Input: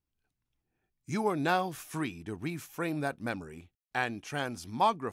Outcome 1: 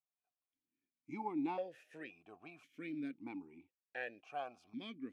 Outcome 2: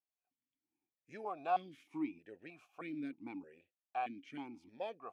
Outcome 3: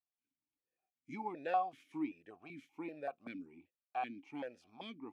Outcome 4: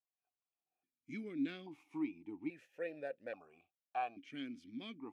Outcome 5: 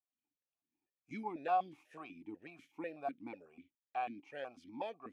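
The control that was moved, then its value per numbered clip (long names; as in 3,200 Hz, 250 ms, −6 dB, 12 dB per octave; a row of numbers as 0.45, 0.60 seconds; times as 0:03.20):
formant filter that steps through the vowels, speed: 1.9, 3.2, 5.2, 1.2, 8.1 Hertz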